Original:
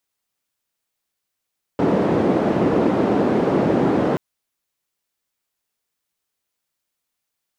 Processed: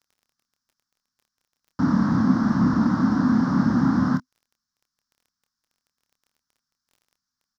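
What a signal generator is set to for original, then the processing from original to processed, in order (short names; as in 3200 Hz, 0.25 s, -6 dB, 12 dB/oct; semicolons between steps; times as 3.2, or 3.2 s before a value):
noise band 240–330 Hz, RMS -18 dBFS 2.38 s
EQ curve 160 Hz 0 dB, 250 Hz +5 dB, 400 Hz -25 dB, 670 Hz -17 dB, 1100 Hz 0 dB, 1600 Hz 0 dB, 2500 Hz -23 dB, 5400 Hz +6 dB, 8600 Hz -16 dB; crackle 16/s -47 dBFS; doubler 27 ms -8 dB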